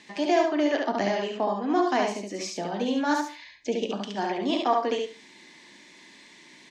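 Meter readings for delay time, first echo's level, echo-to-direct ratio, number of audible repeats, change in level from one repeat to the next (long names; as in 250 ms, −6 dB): 70 ms, −3.0 dB, −3.0 dB, 3, −14.5 dB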